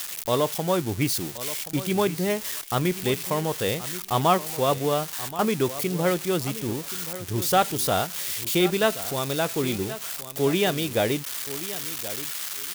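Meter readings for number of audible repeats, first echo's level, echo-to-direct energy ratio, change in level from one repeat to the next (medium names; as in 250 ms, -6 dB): 2, -14.5 dB, -14.5 dB, -16.0 dB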